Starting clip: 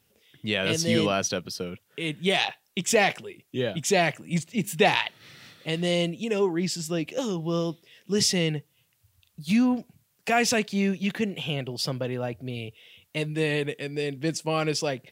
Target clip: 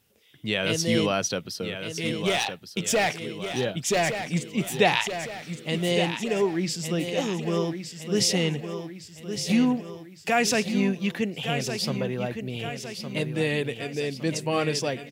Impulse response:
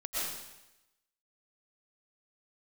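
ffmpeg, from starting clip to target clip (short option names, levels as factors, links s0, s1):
-filter_complex "[0:a]asettb=1/sr,asplit=3[s0][s1][s2];[s0]atrim=end=2.054[s3];[s1]atrim=start=2.05:end=4.16,asetpts=PTS-STARTPTS,afade=t=in:d=0.004:c=qsin,afade=t=out:st=2.106:d=0.004:c=qsin,asoftclip=type=hard:threshold=0.126[s4];[s2]atrim=start=4.156[s5];[s3][s4]acrossfade=d=0.004:c1=hsin:c2=qsin[s6];[s6][s5]acrossfade=d=0.004:c1=qsin:c2=hsin,aecho=1:1:1162|2324|3486|4648|5810|6972:0.376|0.192|0.0978|0.0499|0.0254|0.013"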